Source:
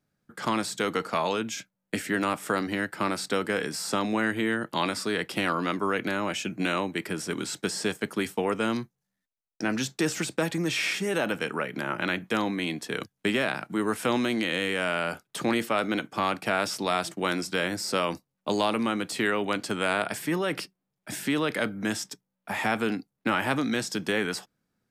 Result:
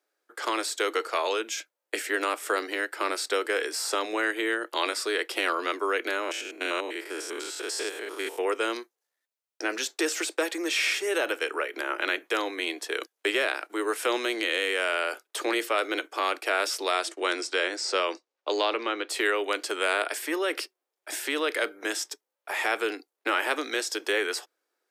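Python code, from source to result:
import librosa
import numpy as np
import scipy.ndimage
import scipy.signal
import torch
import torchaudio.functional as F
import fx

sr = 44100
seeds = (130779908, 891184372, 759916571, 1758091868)

y = fx.spec_steps(x, sr, hold_ms=100, at=(6.21, 8.4), fade=0.02)
y = fx.lowpass(y, sr, hz=fx.line((16.91, 11000.0), (19.09, 4700.0)), slope=24, at=(16.91, 19.09), fade=0.02)
y = scipy.signal.sosfilt(scipy.signal.butter(8, 340.0, 'highpass', fs=sr, output='sos'), y)
y = fx.dynamic_eq(y, sr, hz=830.0, q=1.5, threshold_db=-42.0, ratio=4.0, max_db=-5)
y = F.gain(torch.from_numpy(y), 2.5).numpy()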